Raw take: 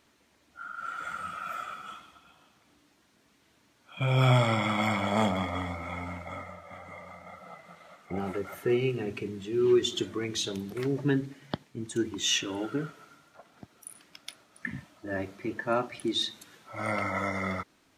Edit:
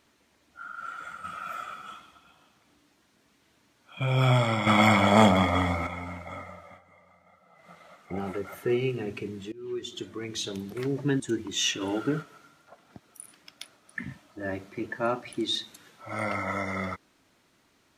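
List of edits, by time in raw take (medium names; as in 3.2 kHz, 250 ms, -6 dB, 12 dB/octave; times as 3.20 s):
0.76–1.24 s: fade out, to -6.5 dB
4.67–5.87 s: gain +8 dB
6.65–7.70 s: dip -13 dB, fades 0.16 s
9.52–10.60 s: fade in, from -23 dB
11.20–11.87 s: delete
12.48–12.89 s: gain +4 dB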